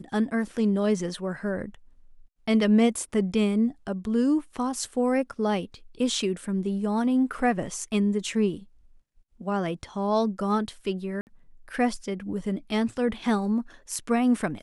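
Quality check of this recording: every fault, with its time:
11.21–11.27 s: dropout 59 ms

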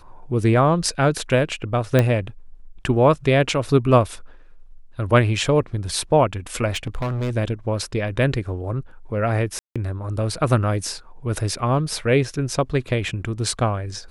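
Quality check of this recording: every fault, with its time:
1.99 s: pop -5 dBFS
6.72–7.32 s: clipped -21 dBFS
9.59–9.76 s: dropout 166 ms

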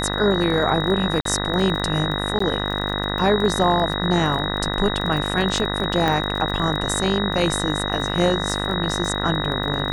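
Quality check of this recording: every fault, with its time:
buzz 50 Hz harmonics 40 -26 dBFS
crackle 25 per s -26 dBFS
whine 3.8 kHz -27 dBFS
1.21–1.25 s: dropout 43 ms
2.39–2.40 s: dropout 14 ms
6.08 s: pop -9 dBFS

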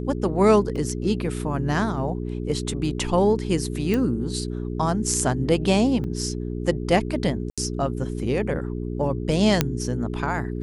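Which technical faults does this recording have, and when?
hum 60 Hz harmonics 7 -29 dBFS
0.76 s: dropout 2.2 ms
3.94 s: pop -12 dBFS
6.04 s: dropout 2.3 ms
7.50–7.58 s: dropout 76 ms
9.61 s: pop -3 dBFS

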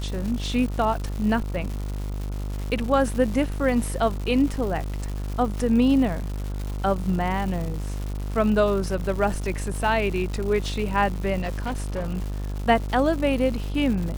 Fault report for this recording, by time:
buzz 50 Hz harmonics 29 -29 dBFS
crackle 290 per s -31 dBFS
11.41–12.36 s: clipped -23 dBFS

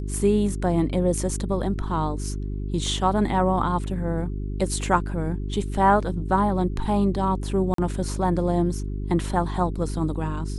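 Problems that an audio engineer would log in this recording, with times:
hum 50 Hz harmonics 8 -29 dBFS
7.74–7.78 s: dropout 43 ms

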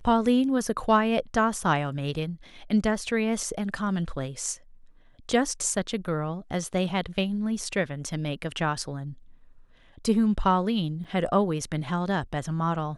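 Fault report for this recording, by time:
11.04–11.05 s: dropout 6.3 ms

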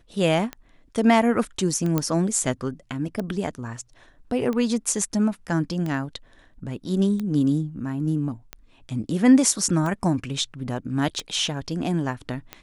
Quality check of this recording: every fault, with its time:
tick 45 rpm -17 dBFS
1.98 s: pop -9 dBFS

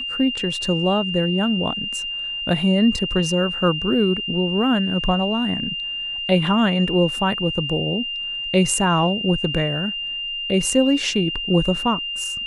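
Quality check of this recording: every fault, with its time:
whine 2.8 kHz -25 dBFS

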